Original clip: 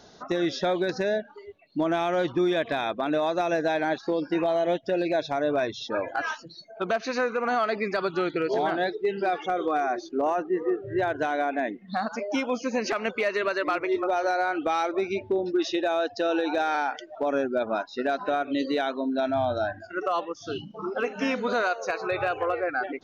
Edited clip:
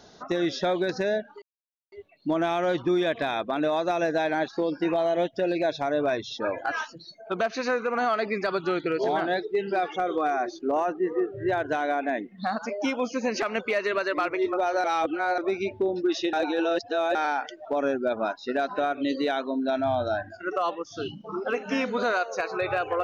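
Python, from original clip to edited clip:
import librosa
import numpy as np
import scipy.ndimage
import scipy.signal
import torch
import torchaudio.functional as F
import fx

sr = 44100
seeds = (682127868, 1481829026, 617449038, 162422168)

y = fx.edit(x, sr, fx.insert_silence(at_s=1.42, length_s=0.5),
    fx.reverse_span(start_s=14.34, length_s=0.54),
    fx.reverse_span(start_s=15.83, length_s=0.82), tone=tone)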